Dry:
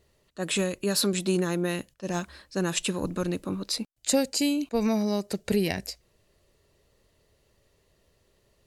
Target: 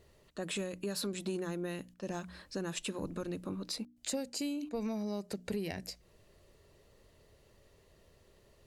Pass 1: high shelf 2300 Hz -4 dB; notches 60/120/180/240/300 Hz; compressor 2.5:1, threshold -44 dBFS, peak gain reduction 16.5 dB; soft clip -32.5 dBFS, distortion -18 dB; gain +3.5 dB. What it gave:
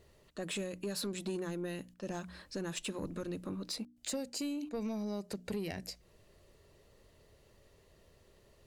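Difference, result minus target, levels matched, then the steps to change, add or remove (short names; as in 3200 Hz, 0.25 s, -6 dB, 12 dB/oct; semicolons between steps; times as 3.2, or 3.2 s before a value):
soft clip: distortion +10 dB
change: soft clip -26 dBFS, distortion -29 dB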